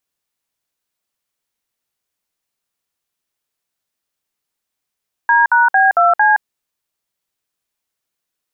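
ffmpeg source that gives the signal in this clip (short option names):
-f lavfi -i "aevalsrc='0.282*clip(min(mod(t,0.226),0.169-mod(t,0.226))/0.002,0,1)*(eq(floor(t/0.226),0)*(sin(2*PI*941*mod(t,0.226))+sin(2*PI*1633*mod(t,0.226)))+eq(floor(t/0.226),1)*(sin(2*PI*941*mod(t,0.226))+sin(2*PI*1477*mod(t,0.226)))+eq(floor(t/0.226),2)*(sin(2*PI*770*mod(t,0.226))+sin(2*PI*1633*mod(t,0.226)))+eq(floor(t/0.226),3)*(sin(2*PI*697*mod(t,0.226))+sin(2*PI*1336*mod(t,0.226)))+eq(floor(t/0.226),4)*(sin(2*PI*852*mod(t,0.226))+sin(2*PI*1633*mod(t,0.226))))':d=1.13:s=44100"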